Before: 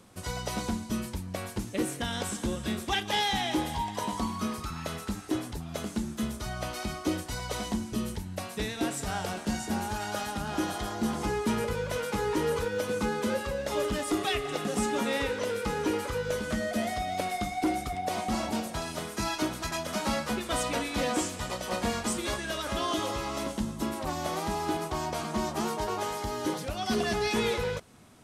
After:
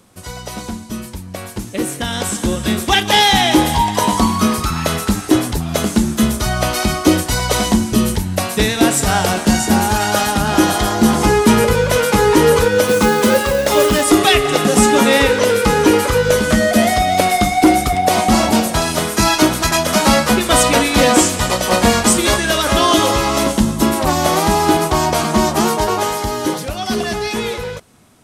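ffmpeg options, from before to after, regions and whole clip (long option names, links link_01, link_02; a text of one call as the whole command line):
ffmpeg -i in.wav -filter_complex "[0:a]asettb=1/sr,asplit=3[link_01][link_02][link_03];[link_01]atrim=end=12.854[link_04];[link_02]atrim=start=12.85:end=14.04,asetpts=PTS-STARTPTS,afade=type=in:duration=0.004:curve=qsin,afade=type=out:start_time=1.186:duration=0.004:curve=qsin,lowshelf=frequency=160:gain=-4.5,acrusher=bits=5:mode=log:mix=0:aa=0.000001[link_05];[link_03]atrim=start=14.036[link_06];[link_04][link_05]acrossfade=duration=0.004:curve1=hsin:curve2=qsin[link_07];[link_07][link_06]acrossfade=duration=0.004:curve1=qsin:curve2=hsin,highshelf=frequency=8600:gain=5,dynaudnorm=framelen=290:gausssize=17:maxgain=13dB,volume=4.5dB" out.wav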